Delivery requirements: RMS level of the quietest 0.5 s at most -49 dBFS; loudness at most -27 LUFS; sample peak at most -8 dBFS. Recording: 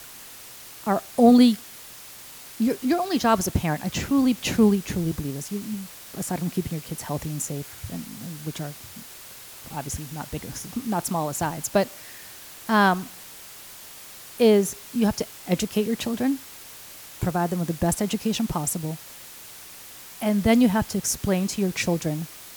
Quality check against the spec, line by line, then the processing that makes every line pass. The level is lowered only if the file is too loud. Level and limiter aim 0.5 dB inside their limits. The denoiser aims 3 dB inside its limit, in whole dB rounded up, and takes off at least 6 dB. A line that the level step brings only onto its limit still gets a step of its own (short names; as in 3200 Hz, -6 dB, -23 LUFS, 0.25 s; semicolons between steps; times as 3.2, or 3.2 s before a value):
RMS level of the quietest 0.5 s -43 dBFS: fail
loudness -24.5 LUFS: fail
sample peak -6.0 dBFS: fail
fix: denoiser 6 dB, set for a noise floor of -43 dBFS; gain -3 dB